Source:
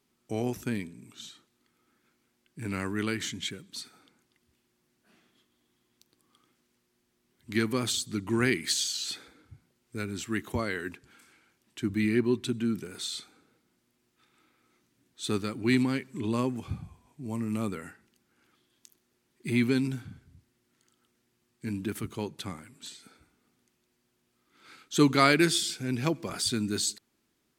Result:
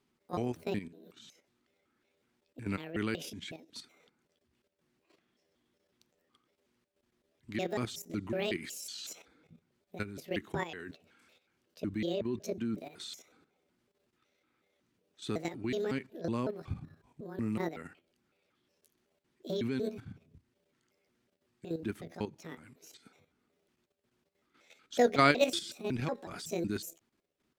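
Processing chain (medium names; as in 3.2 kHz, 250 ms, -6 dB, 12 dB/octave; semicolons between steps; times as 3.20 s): pitch shift switched off and on +8.5 st, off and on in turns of 185 ms; treble shelf 6 kHz -11.5 dB; level held to a coarse grid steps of 11 dB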